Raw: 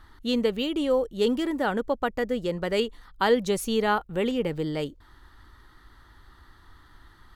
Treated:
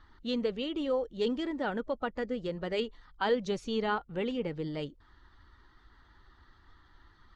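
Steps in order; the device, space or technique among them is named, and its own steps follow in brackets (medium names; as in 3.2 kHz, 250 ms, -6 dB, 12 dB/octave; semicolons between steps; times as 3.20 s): clip after many re-uploads (low-pass 6 kHz 24 dB/octave; coarse spectral quantiser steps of 15 dB); trim -6.5 dB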